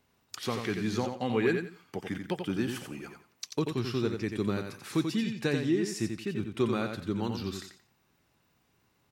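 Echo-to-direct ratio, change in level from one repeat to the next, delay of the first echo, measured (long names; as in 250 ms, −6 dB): −6.0 dB, −12.5 dB, 88 ms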